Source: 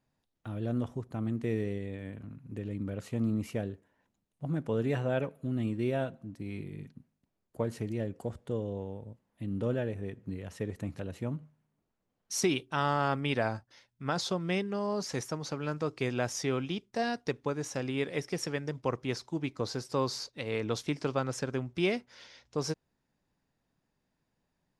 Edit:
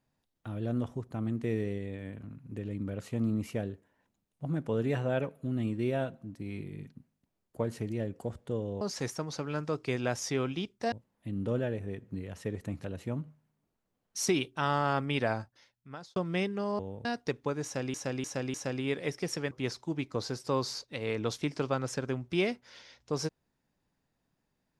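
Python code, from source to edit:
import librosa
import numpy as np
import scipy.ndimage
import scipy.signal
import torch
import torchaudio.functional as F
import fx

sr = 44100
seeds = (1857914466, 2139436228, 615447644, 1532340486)

y = fx.edit(x, sr, fx.swap(start_s=8.81, length_s=0.26, other_s=14.94, other_length_s=2.11),
    fx.fade_out_span(start_s=13.47, length_s=0.84),
    fx.repeat(start_s=17.64, length_s=0.3, count=4),
    fx.cut(start_s=18.61, length_s=0.35), tone=tone)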